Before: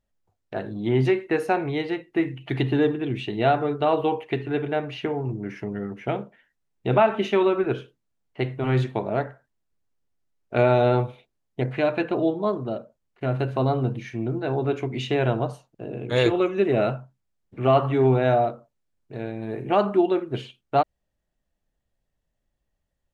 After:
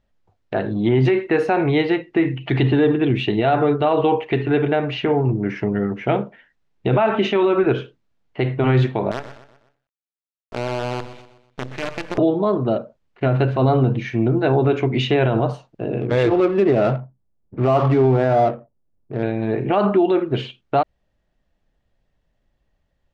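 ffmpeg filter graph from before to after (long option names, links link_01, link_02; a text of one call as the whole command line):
ffmpeg -i in.wav -filter_complex "[0:a]asettb=1/sr,asplit=3[link_01][link_02][link_03];[link_01]atrim=end=9.114[link_04];[link_02]atrim=start=9.11:end=12.18,asetpts=PTS-STARTPTS,afade=type=in:duration=0.004:curve=qsin,afade=type=out:start_time=3.066:duration=0.004:curve=qsin,acompressor=threshold=-45dB:ratio=2:attack=3.2:release=140:knee=1:detection=peak,acrusher=bits=6:dc=4:mix=0:aa=0.000001,aecho=1:1:124|248|372|496:0.224|0.0985|0.0433|0.0191,atrim=end_sample=135387[link_05];[link_03]atrim=start=12.176[link_06];[link_04][link_05]acrossfade=duration=0.004:curve1=hsin:curve2=qsin[link_07];[link_07][link_06]acrossfade=duration=0.004:curve1=qsin:curve2=hsin,asettb=1/sr,asplit=3[link_08][link_09][link_10];[link_08]atrim=end=16.014[link_11];[link_09]atrim=start=16.01:end=19.23,asetpts=PTS-STARTPTS,afade=type=in:duration=0.004:curve=qsin,afade=type=out:start_time=3.216:duration=0.004:curve=qsin,lowpass=frequency=2100:poles=1,adynamicsmooth=sensitivity=7:basefreq=800[link_12];[link_10]atrim=start=19.226[link_13];[link_11][link_12]acrossfade=duration=0.004:curve1=hsin:curve2=qsin[link_14];[link_14][link_13]acrossfade=duration=0.004:curve1=qsin:curve2=hsin,lowpass=4300,alimiter=level_in=17dB:limit=-1dB:release=50:level=0:latency=1,volume=-7.5dB" out.wav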